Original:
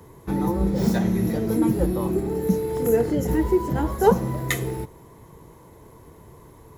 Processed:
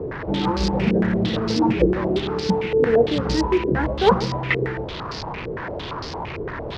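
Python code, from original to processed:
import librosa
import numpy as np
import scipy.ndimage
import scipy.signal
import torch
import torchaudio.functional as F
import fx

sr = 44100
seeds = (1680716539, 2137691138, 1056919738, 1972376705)

p1 = fx.delta_mod(x, sr, bps=32000, step_db=-27.0)
p2 = fx.quant_float(p1, sr, bits=2)
p3 = p2 + fx.echo_single(p2, sr, ms=144, db=-15.0, dry=0)
y = fx.filter_held_lowpass(p3, sr, hz=8.8, low_hz=440.0, high_hz=4900.0)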